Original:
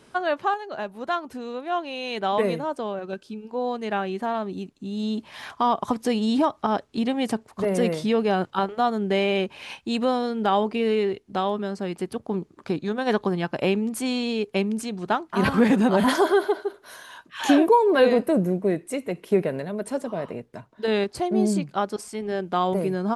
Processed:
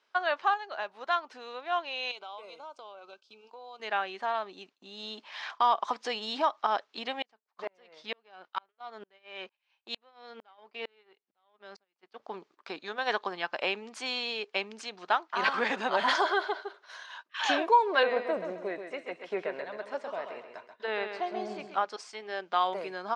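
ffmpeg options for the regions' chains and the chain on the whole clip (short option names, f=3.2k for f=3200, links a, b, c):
-filter_complex "[0:a]asettb=1/sr,asplit=3[a][b][c];[a]atrim=end=2.114[d];[b]atrim=start=2.11:end=3.8,asetpts=PTS-STARTPTS,afade=t=in:d=0.004:c=qsin,afade=t=out:st=1.686:d=0.004:c=qsin,bass=f=250:g=-7,treble=f=4k:g=5,acompressor=threshold=-37dB:ratio=5:attack=3.2:release=140:knee=1:detection=peak,asuperstop=centerf=1800:order=4:qfactor=2.6[e];[c]atrim=start=3.796[f];[d][e]acrossfade=d=0.004:c1=hsin:c2=qsin[g];[g][f]acrossfade=d=0.004:c1=qsin:c2=hsin,asettb=1/sr,asplit=3[h][i][j];[h]atrim=end=7.224[k];[i]atrim=start=7.22:end=12.22,asetpts=PTS-STARTPTS,afade=t=in:d=0.004:c=qsin,afade=t=out:st=4.996:d=0.004:c=qsin,aeval=exprs='if(lt(val(0),0),0.708*val(0),val(0))':c=same,lowpass=6.8k,aeval=exprs='val(0)*pow(10,-39*if(lt(mod(-2.2*n/s,1),2*abs(-2.2)/1000),1-mod(-2.2*n/s,1)/(2*abs(-2.2)/1000),(mod(-2.2*n/s,1)-2*abs(-2.2)/1000)/(1-2*abs(-2.2)/1000))/20)':c=same[l];[j]atrim=start=12.216[m];[k][l]acrossfade=d=0.004:c1=hsin:c2=qsin[n];[n][m]acrossfade=d=0.004:c1=qsin:c2=hsin,asettb=1/sr,asplit=3[o][p][q];[o]atrim=end=18.034[r];[p]atrim=start=18.03:end=21.86,asetpts=PTS-STARTPTS,afade=t=in:d=0.004:c=qsin,afade=t=out:st=3.826:d=0.004:c=qsin,acrossover=split=2500[s][t];[t]acompressor=threshold=-52dB:ratio=4:attack=1:release=60[u];[s][u]amix=inputs=2:normalize=0,aecho=1:1:133|266|399|532:0.422|0.156|0.0577|0.0214,atrim=end_sample=168903[v];[q]atrim=start=21.856[w];[r][v]acrossfade=d=0.004:c1=hsin:c2=qsin[x];[x][w]acrossfade=d=0.004:c1=qsin:c2=hsin,lowpass=f=5.7k:w=0.5412,lowpass=f=5.7k:w=1.3066,agate=range=-14dB:threshold=-44dB:ratio=16:detection=peak,highpass=840"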